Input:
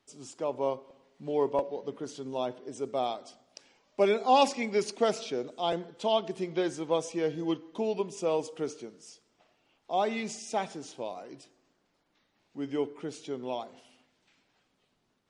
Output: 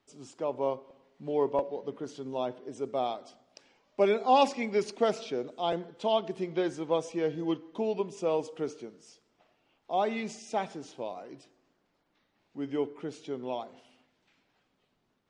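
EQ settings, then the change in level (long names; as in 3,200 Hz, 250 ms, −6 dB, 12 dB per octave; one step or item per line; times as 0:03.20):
low-pass filter 3,700 Hz 6 dB per octave
0.0 dB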